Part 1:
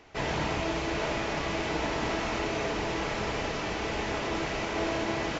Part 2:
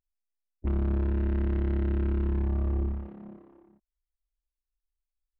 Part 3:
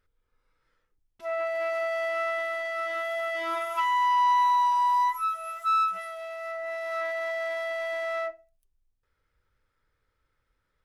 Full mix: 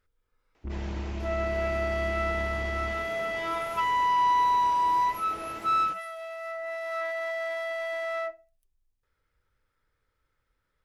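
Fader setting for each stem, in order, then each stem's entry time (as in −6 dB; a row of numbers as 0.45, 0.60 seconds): −12.5, −7.5, −1.0 decibels; 0.55, 0.00, 0.00 seconds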